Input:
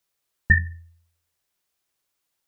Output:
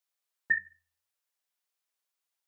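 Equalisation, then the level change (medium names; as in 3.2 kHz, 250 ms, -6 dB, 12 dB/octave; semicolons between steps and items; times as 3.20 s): high-pass 530 Hz 12 dB/octave; -8.5 dB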